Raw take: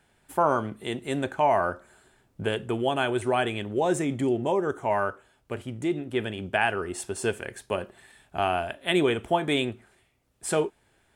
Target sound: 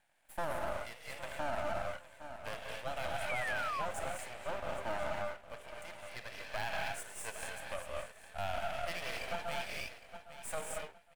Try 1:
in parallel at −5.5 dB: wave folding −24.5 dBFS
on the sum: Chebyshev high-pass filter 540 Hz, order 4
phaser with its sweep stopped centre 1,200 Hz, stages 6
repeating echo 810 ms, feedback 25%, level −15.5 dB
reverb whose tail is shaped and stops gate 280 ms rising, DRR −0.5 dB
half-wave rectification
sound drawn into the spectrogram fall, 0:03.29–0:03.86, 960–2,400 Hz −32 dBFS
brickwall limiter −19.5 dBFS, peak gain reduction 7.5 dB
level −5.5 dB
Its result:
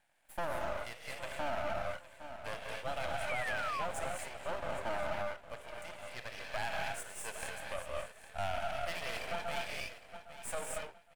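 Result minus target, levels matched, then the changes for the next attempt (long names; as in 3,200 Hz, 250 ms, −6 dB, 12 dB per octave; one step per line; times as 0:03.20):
wave folding: distortion −12 dB
change: wave folding −30.5 dBFS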